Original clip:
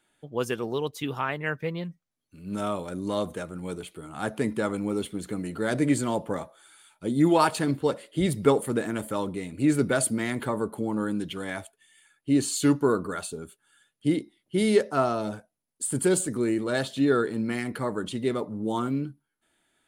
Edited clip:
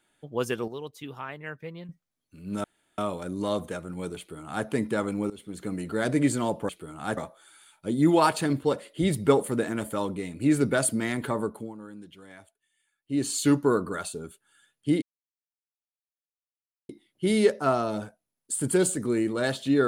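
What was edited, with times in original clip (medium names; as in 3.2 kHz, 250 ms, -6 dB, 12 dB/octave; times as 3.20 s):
0.68–1.89 s: gain -8.5 dB
2.64 s: insert room tone 0.34 s
3.84–4.32 s: copy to 6.35 s
4.96–5.38 s: fade in, from -20 dB
10.59–12.52 s: dip -15 dB, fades 0.34 s
14.20 s: insert silence 1.87 s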